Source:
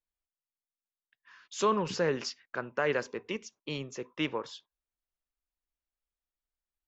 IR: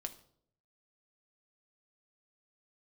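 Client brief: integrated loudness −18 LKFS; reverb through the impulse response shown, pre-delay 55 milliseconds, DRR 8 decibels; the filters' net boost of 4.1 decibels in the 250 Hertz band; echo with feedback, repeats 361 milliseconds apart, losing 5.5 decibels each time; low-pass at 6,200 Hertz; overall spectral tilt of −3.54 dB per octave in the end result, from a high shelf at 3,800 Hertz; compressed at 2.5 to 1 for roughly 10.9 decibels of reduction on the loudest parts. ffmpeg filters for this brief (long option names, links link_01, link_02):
-filter_complex "[0:a]lowpass=6200,equalizer=frequency=250:width_type=o:gain=5.5,highshelf=frequency=3800:gain=8.5,acompressor=threshold=-38dB:ratio=2.5,aecho=1:1:361|722|1083|1444|1805|2166|2527:0.531|0.281|0.149|0.079|0.0419|0.0222|0.0118,asplit=2[link_01][link_02];[1:a]atrim=start_sample=2205,adelay=55[link_03];[link_02][link_03]afir=irnorm=-1:irlink=0,volume=-6dB[link_04];[link_01][link_04]amix=inputs=2:normalize=0,volume=20dB"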